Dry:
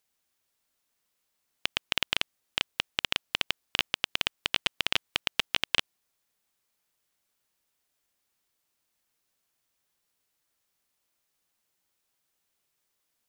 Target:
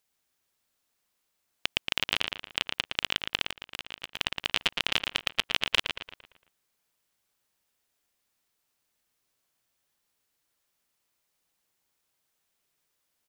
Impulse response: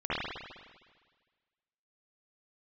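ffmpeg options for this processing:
-filter_complex "[0:a]asplit=2[a][b];[b]adelay=114,lowpass=f=4.3k:p=1,volume=-5dB,asplit=2[c][d];[d]adelay=114,lowpass=f=4.3k:p=1,volume=0.47,asplit=2[e][f];[f]adelay=114,lowpass=f=4.3k:p=1,volume=0.47,asplit=2[g][h];[h]adelay=114,lowpass=f=4.3k:p=1,volume=0.47,asplit=2[i][j];[j]adelay=114,lowpass=f=4.3k:p=1,volume=0.47,asplit=2[k][l];[l]adelay=114,lowpass=f=4.3k:p=1,volume=0.47[m];[a][c][e][g][i][k][m]amix=inputs=7:normalize=0,asettb=1/sr,asplit=3[n][o][p];[n]atrim=end=3.474[q];[o]atrim=start=3.47:end=4.16,asetpts=PTS-STARTPTS,afade=t=in:d=0.004:c=qsin,afade=t=out:st=0.686:d=0.004:c=qsin,acompressor=threshold=-34dB:ratio=8[r];[p]atrim=start=4.156[s];[q][r]acrossfade=d=0.004:c1=hsin:c2=qsin[t];[t][s]acrossfade=d=0.004:c1=qsin:c2=hsin"

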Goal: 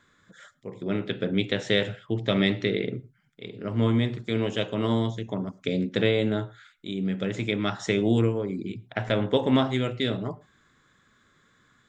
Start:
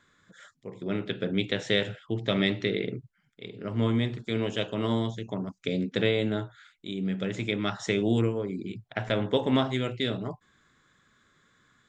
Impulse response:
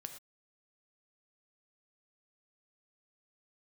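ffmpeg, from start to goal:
-filter_complex "[0:a]asplit=2[a][b];[1:a]atrim=start_sample=2205,highshelf=f=2.5k:g=-10.5[c];[b][c]afir=irnorm=-1:irlink=0,volume=-4.5dB[d];[a][d]amix=inputs=2:normalize=0"

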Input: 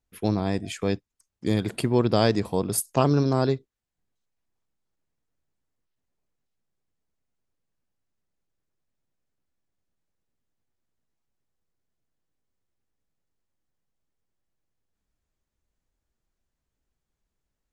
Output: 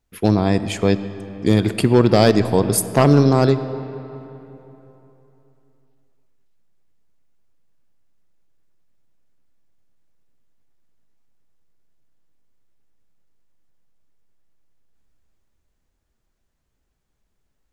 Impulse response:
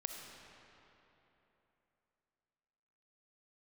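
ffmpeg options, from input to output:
-filter_complex "[0:a]volume=12dB,asoftclip=hard,volume=-12dB,asplit=2[a][b];[1:a]atrim=start_sample=2205,highshelf=f=6k:g=-10[c];[b][c]afir=irnorm=-1:irlink=0,volume=-2.5dB[d];[a][d]amix=inputs=2:normalize=0,volume=4.5dB"

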